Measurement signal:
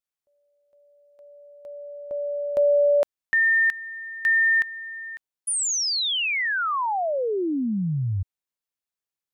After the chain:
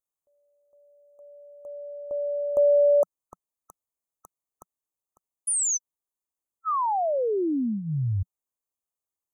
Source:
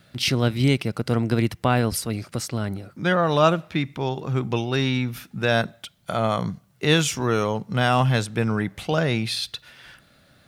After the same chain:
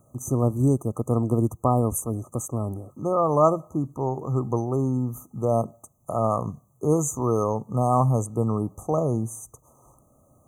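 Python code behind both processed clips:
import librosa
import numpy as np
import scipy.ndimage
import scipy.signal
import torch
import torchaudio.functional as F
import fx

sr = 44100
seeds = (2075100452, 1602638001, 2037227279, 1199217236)

y = fx.brickwall_bandstop(x, sr, low_hz=1300.0, high_hz=6000.0)
y = fx.peak_eq(y, sr, hz=180.0, db=-10.5, octaves=0.24)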